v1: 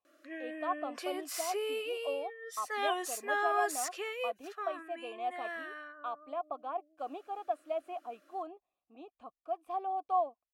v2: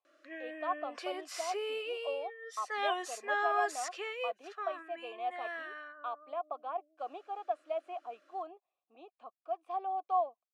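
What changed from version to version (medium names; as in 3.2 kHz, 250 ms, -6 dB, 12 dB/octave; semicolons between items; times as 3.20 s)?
speech: add peaking EQ 280 Hz -5 dB 0.32 oct; master: add band-pass 370–6100 Hz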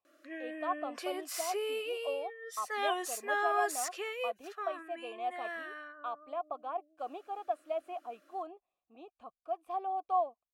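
master: remove band-pass 370–6100 Hz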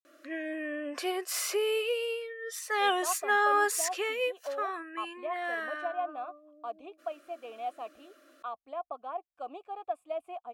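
speech: entry +2.40 s; background +6.5 dB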